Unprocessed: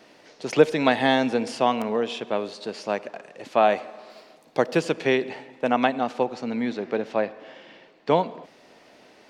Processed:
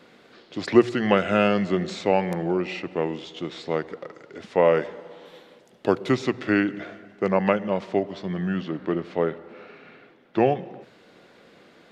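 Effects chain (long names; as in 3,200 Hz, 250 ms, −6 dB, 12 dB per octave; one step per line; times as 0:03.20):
mains-hum notches 50/100/150 Hz
speed change −22%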